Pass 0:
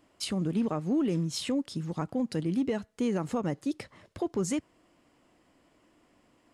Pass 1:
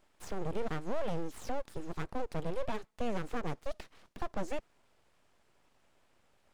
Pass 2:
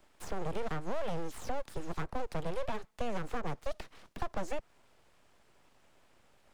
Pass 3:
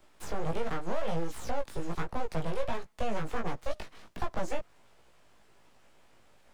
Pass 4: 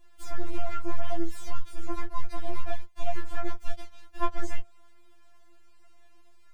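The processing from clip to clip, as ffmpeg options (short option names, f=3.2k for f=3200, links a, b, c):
-filter_complex "[0:a]acrossover=split=3500[a][b];[b]acompressor=threshold=-54dB:ratio=4:attack=1:release=60[c];[a][c]amix=inputs=2:normalize=0,aeval=exprs='abs(val(0))':c=same,volume=-3dB"
-filter_complex "[0:a]acrossover=split=200|460|1600[a][b][c][d];[a]acompressor=threshold=-36dB:ratio=4[e];[b]acompressor=threshold=-55dB:ratio=4[f];[c]acompressor=threshold=-41dB:ratio=4[g];[d]acompressor=threshold=-53dB:ratio=4[h];[e][f][g][h]amix=inputs=4:normalize=0,volume=4.5dB"
-af "flanger=delay=16.5:depth=2.6:speed=1.4,volume=6dB"
-af "afftfilt=real='re*4*eq(mod(b,16),0)':imag='im*4*eq(mod(b,16),0)':win_size=2048:overlap=0.75,volume=1dB"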